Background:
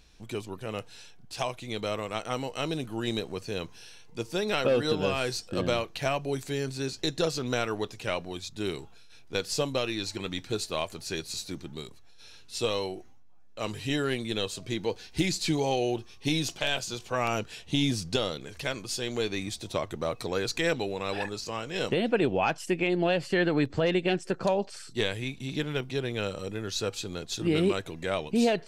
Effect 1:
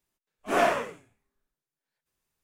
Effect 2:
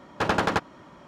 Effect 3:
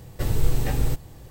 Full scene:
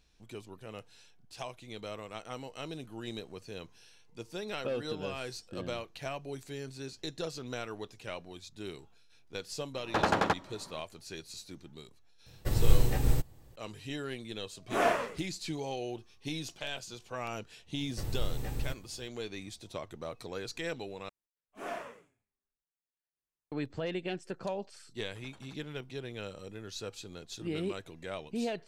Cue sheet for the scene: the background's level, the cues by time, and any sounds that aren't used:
background −10 dB
0:09.74: mix in 2 −5 dB + parametric band 720 Hz +3.5 dB
0:12.26: mix in 3 −0.5 dB + expander for the loud parts, over −38 dBFS
0:14.23: mix in 1 −4.5 dB
0:17.78: mix in 3 −12.5 dB
0:21.09: overwrite with 1 −16.5 dB
0:24.95: mix in 2 −18 dB + noise reduction from a noise print of the clip's start 18 dB

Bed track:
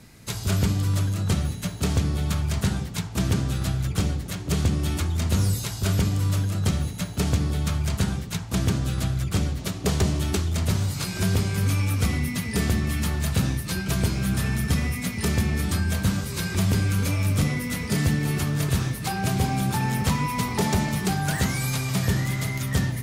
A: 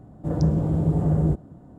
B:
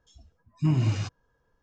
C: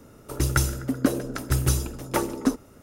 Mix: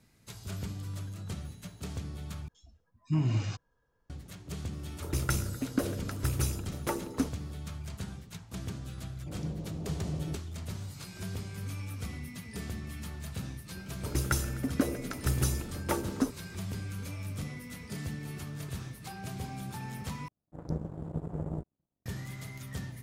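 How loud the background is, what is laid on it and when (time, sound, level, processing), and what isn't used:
bed track −15.5 dB
0:02.48: overwrite with B −4.5 dB
0:04.73: mix in C −8 dB + loose part that buzzes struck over −23 dBFS, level −29 dBFS
0:09.02: mix in A −16 dB
0:13.75: mix in C −6.5 dB
0:20.28: overwrite with A −9.5 dB + power curve on the samples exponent 2

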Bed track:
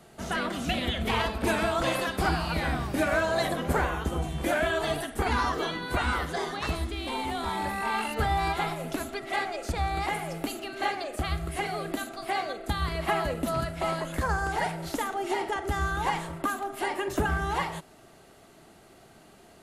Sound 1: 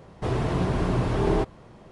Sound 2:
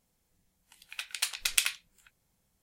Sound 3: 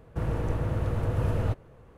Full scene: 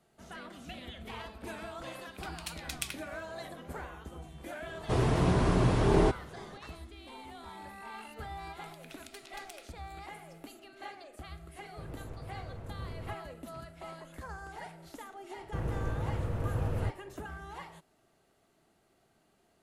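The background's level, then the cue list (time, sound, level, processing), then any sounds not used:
bed track −16 dB
0:01.24: mix in 2 −11 dB
0:04.67: mix in 1 −1.5 dB + high-shelf EQ 7,400 Hz +8.5 dB
0:07.92: mix in 2 −2.5 dB + downward compressor, threshold −46 dBFS
0:11.61: mix in 3 −16 dB + highs frequency-modulated by the lows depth 0.41 ms
0:15.37: mix in 3 −5.5 dB

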